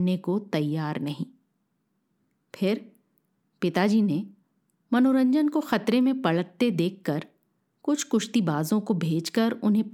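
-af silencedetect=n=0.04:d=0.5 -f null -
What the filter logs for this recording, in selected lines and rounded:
silence_start: 1.23
silence_end: 2.54 | silence_duration: 1.31
silence_start: 2.78
silence_end: 3.62 | silence_duration: 0.85
silence_start: 4.21
silence_end: 4.92 | silence_duration: 0.71
silence_start: 7.22
silence_end: 7.88 | silence_duration: 0.66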